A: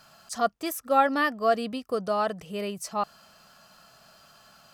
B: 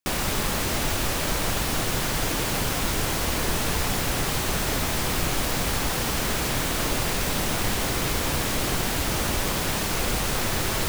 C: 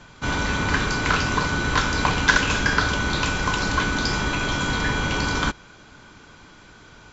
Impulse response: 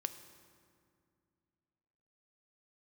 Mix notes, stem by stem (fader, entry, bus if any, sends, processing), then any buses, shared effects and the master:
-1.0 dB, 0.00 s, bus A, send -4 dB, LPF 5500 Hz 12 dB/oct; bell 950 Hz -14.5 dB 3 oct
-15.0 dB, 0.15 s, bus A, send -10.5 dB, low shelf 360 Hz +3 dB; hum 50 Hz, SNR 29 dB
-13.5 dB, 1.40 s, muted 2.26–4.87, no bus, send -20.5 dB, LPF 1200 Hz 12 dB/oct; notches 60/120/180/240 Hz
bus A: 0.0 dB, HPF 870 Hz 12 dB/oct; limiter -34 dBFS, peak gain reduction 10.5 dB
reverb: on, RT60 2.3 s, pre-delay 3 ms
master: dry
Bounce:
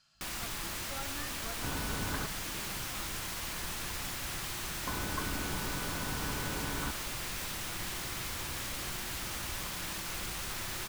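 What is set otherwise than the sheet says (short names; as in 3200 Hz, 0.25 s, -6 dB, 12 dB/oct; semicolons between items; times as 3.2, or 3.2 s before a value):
stem A -1.0 dB -> -8.0 dB; stem B -15.0 dB -> -7.5 dB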